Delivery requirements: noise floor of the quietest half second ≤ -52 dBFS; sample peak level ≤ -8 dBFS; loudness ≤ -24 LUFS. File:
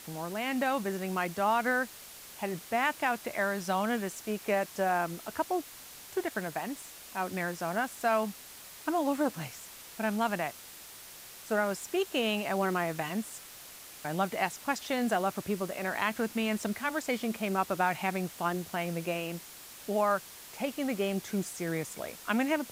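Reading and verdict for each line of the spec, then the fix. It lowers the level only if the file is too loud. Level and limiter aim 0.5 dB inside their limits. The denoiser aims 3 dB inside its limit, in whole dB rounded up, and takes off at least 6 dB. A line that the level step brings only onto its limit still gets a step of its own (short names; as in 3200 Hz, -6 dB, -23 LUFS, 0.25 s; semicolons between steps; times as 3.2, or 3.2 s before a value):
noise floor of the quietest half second -49 dBFS: fail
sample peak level -14.0 dBFS: OK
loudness -32.0 LUFS: OK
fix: denoiser 6 dB, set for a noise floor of -49 dBFS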